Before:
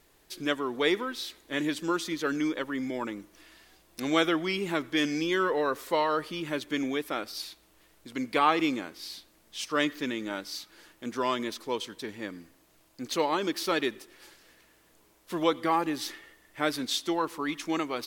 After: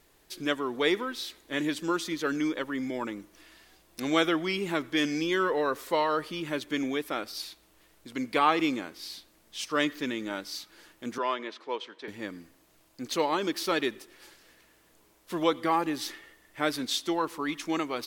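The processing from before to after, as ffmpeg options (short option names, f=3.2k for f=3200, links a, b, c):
-filter_complex "[0:a]asettb=1/sr,asplit=3[a][b][c];[a]atrim=end=11.184[d];[b]atrim=start=11.18:end=12.08,asetpts=PTS-STARTPTS,afade=t=in:d=0.004:c=qsin,afade=t=out:st=0.896:d=0.004:c=qsin,highpass=420,lowpass=3k[e];[c]atrim=start=12.076[f];[d][e]acrossfade=d=0.004:c1=hsin:c2=qsin[g];[g][f]acrossfade=d=0.004:c1=qsin:c2=hsin"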